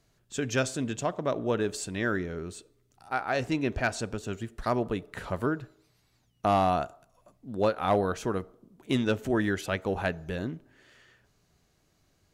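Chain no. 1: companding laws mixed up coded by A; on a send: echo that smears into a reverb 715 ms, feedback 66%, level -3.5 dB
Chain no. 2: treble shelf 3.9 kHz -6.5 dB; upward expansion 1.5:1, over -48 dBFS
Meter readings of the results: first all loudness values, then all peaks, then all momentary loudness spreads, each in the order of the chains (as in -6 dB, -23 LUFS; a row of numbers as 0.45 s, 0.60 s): -29.5 LUFS, -32.5 LUFS; -13.0 dBFS, -16.0 dBFS; 7 LU, 14 LU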